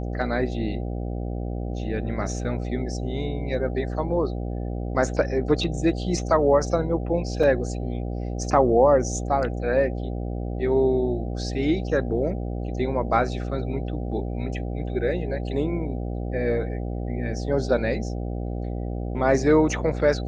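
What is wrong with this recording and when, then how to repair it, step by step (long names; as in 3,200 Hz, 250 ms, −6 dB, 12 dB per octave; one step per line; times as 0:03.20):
mains buzz 60 Hz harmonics 13 −29 dBFS
0:07.43: drop-out 3.7 ms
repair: hum removal 60 Hz, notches 13
repair the gap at 0:07.43, 3.7 ms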